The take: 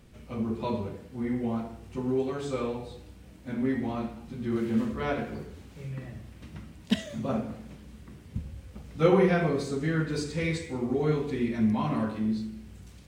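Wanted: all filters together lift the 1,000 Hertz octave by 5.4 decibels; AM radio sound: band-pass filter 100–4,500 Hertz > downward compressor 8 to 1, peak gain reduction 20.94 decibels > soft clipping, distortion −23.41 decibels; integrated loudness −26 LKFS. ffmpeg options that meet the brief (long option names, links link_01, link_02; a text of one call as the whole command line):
ffmpeg -i in.wav -af "highpass=100,lowpass=4500,equalizer=frequency=1000:width_type=o:gain=7,acompressor=threshold=-37dB:ratio=8,asoftclip=threshold=-30dB,volume=17dB" out.wav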